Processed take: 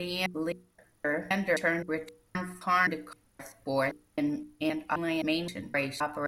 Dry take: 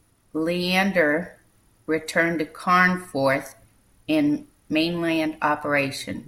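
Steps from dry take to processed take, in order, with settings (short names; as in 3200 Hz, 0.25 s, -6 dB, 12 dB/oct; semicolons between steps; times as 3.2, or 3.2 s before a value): slices in reverse order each 0.261 s, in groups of 3; notches 60/120/180/240/300/360/420/480 Hz; gain -7.5 dB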